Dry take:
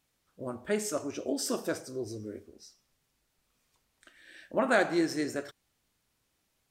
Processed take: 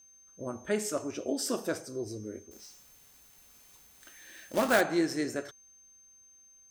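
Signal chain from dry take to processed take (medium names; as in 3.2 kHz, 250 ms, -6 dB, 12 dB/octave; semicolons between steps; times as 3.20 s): whistle 6.3 kHz -56 dBFS; 2.51–4.81 s: companded quantiser 4-bit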